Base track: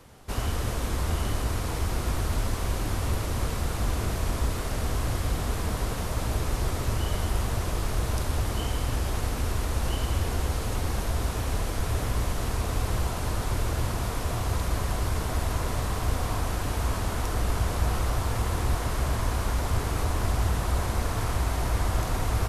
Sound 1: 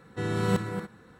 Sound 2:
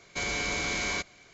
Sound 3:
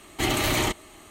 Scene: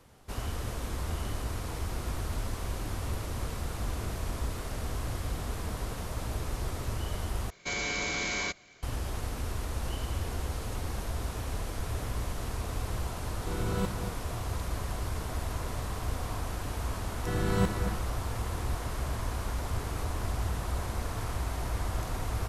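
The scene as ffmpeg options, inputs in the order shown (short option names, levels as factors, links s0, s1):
-filter_complex "[1:a]asplit=2[s0][s1];[0:a]volume=0.473[s2];[s0]asuperstop=centerf=1800:order=4:qfactor=4.1[s3];[s2]asplit=2[s4][s5];[s4]atrim=end=7.504[s6];[2:a]atrim=end=1.33,asetpts=PTS-STARTPTS,volume=0.841[s7];[s5]atrim=start=8.826[s8];[s3]atrim=end=1.19,asetpts=PTS-STARTPTS,volume=0.473,afade=t=in:d=0.004:c=hsin,afade=t=out:st=1.186:d=0.004:c=hsin,adelay=13290[s9];[s1]atrim=end=1.19,asetpts=PTS-STARTPTS,volume=0.75,afade=t=in:d=0.004:c=hsin,afade=t=out:st=1.186:d=0.004:c=hsin,adelay=17090[s10];[s6][s7]acrossfade=d=0.004:c1=hsin:c2=hsin[s11];[s11][s8]acrossfade=d=0.004:c1=hsin:c2=hsin[s12];[s12][s9][s10]amix=inputs=3:normalize=0"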